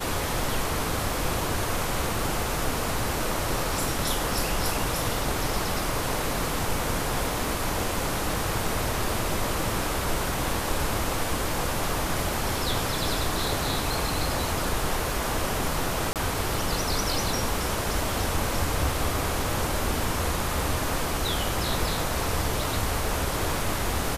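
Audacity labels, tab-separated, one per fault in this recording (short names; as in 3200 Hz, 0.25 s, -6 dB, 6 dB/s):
16.130000	16.160000	gap 28 ms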